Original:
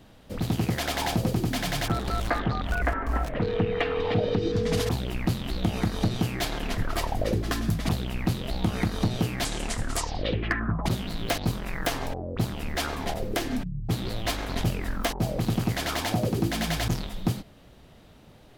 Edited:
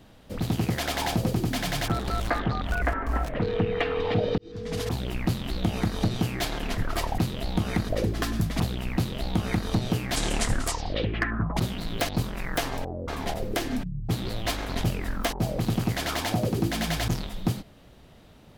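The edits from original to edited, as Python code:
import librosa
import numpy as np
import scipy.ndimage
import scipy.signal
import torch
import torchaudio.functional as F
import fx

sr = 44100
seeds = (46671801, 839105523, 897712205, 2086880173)

y = fx.edit(x, sr, fx.fade_in_span(start_s=4.38, length_s=0.68),
    fx.duplicate(start_s=8.25, length_s=0.71, to_s=7.18),
    fx.clip_gain(start_s=9.46, length_s=0.44, db=4.5),
    fx.cut(start_s=12.37, length_s=0.51), tone=tone)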